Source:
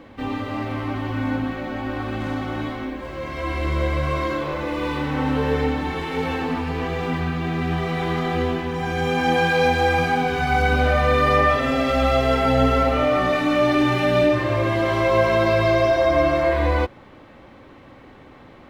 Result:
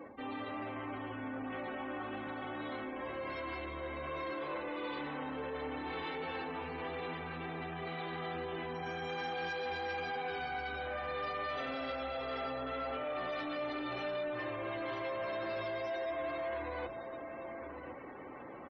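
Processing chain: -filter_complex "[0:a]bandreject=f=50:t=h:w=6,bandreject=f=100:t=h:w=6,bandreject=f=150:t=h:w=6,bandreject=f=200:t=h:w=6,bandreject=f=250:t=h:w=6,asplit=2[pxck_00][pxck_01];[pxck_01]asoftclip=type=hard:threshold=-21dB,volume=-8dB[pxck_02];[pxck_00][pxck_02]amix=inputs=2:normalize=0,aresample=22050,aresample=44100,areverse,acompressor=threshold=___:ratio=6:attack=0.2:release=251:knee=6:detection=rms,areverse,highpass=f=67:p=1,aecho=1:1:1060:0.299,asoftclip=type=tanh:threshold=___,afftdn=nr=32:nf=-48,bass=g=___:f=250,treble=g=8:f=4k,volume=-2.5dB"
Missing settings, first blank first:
-28dB, -30dB, -9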